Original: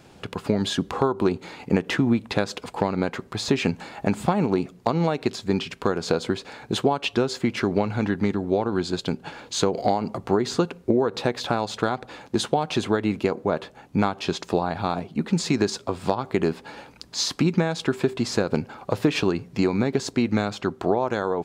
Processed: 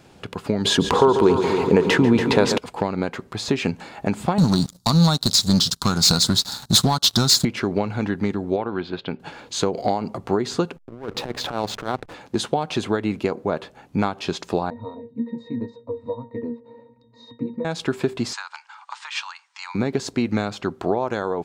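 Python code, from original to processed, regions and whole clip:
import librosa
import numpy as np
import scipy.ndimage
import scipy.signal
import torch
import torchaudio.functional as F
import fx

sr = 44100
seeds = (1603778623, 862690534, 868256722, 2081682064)

y = fx.chain(x, sr, fx.small_body(hz=(440.0, 940.0), ring_ms=35, db=10),
    fx.echo_heads(ms=141, heads='first and second', feedback_pct=59, wet_db=-15.0),
    fx.env_flatten(amount_pct=50), at=(0.65, 2.58))
y = fx.chain(y, sr, fx.curve_eq(hz=(180.0, 460.0, 820.0, 1400.0, 2300.0, 3800.0), db=(0, -20, -8, -4, -30, 10)),
    fx.leveller(passes=3), at=(4.38, 7.45))
y = fx.chain(y, sr, fx.lowpass(hz=3200.0, slope=24),
    fx.tilt_eq(slope=1.5), at=(8.56, 9.2))
y = fx.chain(y, sr, fx.over_compress(threshold_db=-26.0, ratio=-0.5),
    fx.backlash(play_db=-30.5), at=(10.76, 12.14))
y = fx.chain(y, sr, fx.peak_eq(hz=440.0, db=12.0, octaves=2.2),
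    fx.octave_resonator(note='A#', decay_s=0.21), at=(14.7, 17.65))
y = fx.chain(y, sr, fx.cheby1_bandpass(low_hz=880.0, high_hz=8800.0, order=5),
    fx.notch(hz=2600.0, q=28.0), at=(18.33, 19.75))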